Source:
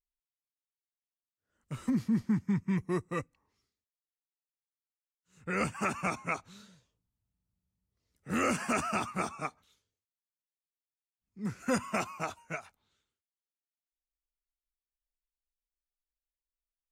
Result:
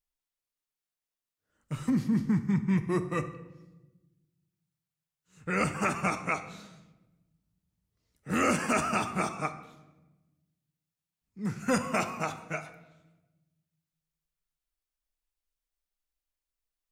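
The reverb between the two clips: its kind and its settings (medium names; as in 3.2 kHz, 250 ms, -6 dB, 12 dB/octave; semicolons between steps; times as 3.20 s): simulated room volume 560 m³, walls mixed, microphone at 0.5 m; trim +3 dB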